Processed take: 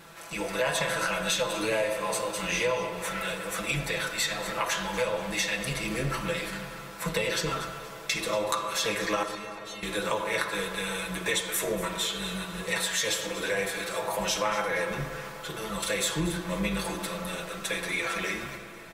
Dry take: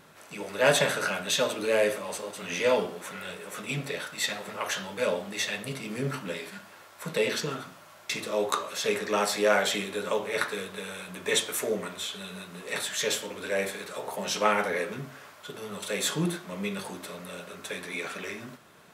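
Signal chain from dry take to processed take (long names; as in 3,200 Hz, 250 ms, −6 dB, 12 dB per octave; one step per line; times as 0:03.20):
sub-octave generator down 2 octaves, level −6 dB
low-shelf EQ 420 Hz −4.5 dB
comb filter 6 ms, depth 79%
dynamic equaliser 1,000 Hz, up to +6 dB, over −49 dBFS, Q 7.3
downward compressor 6 to 1, threshold −30 dBFS, peak gain reduction 13.5 dB
0:09.23–0:09.83: stiff-string resonator 220 Hz, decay 0.29 s, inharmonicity 0.002
delay that swaps between a low-pass and a high-pass 119 ms, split 1,500 Hz, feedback 61%, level −10 dB
comb and all-pass reverb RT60 4.7 s, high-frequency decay 0.4×, pre-delay 20 ms, DRR 11 dB
level +4.5 dB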